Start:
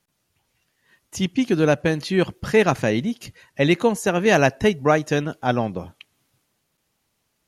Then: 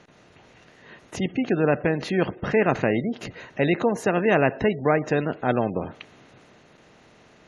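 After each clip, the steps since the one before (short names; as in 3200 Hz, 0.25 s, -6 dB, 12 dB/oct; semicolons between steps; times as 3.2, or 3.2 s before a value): per-bin compression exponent 0.6; high shelf 8600 Hz -9.5 dB; spectral gate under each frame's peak -25 dB strong; gain -5.5 dB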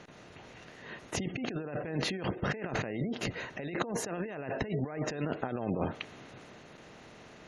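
negative-ratio compressor -30 dBFS, ratio -1; gain -5 dB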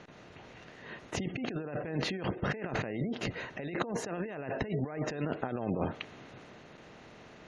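air absorption 62 m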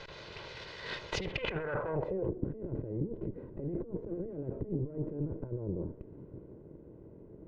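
minimum comb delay 2 ms; compressor 5:1, threshold -38 dBFS, peak gain reduction 10.5 dB; low-pass sweep 4400 Hz -> 290 Hz, 1.29–2.39; gain +5.5 dB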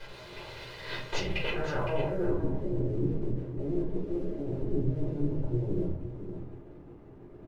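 crossover distortion -58.5 dBFS; echo 0.512 s -10.5 dB; shoebox room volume 200 m³, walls furnished, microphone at 3.9 m; gain -4.5 dB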